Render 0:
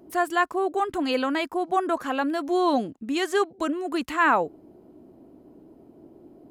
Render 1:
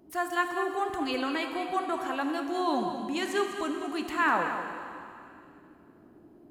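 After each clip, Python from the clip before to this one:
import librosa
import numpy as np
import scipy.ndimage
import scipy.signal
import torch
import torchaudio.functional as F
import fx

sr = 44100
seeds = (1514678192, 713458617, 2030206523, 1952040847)

y = fx.peak_eq(x, sr, hz=490.0, db=-5.0, octaves=1.2)
y = y + 10.0 ** (-10.0 / 20.0) * np.pad(y, (int(200 * sr / 1000.0), 0))[:len(y)]
y = fx.rev_plate(y, sr, seeds[0], rt60_s=2.6, hf_ratio=1.0, predelay_ms=0, drr_db=5.0)
y = y * 10.0 ** (-4.5 / 20.0)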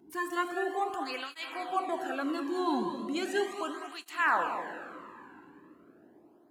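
y = fx.flanger_cancel(x, sr, hz=0.37, depth_ms=1.7)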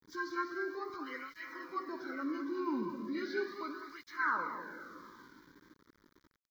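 y = fx.freq_compress(x, sr, knee_hz=1300.0, ratio=1.5)
y = np.where(np.abs(y) >= 10.0 ** (-53.0 / 20.0), y, 0.0)
y = fx.fixed_phaser(y, sr, hz=2700.0, stages=6)
y = y * 10.0 ** (-2.0 / 20.0)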